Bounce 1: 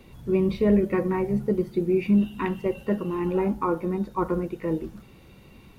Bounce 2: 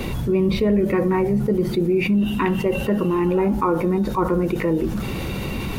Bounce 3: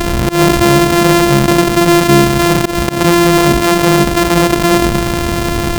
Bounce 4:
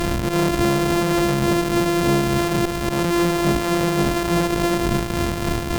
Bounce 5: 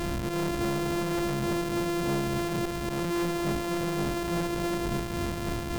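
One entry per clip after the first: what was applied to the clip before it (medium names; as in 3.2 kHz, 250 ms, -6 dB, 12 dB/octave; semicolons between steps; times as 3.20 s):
level flattener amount 70%
sorted samples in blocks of 128 samples; slow attack 143 ms; loudness maximiser +12.5 dB; trim -1 dB
reverse spectral sustain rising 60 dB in 0.54 s; tremolo triangle 3.5 Hz, depth 55%; valve stage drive 13 dB, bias 0.8; trim -1.5 dB
saturation -18 dBFS, distortion -13 dB; trim -6.5 dB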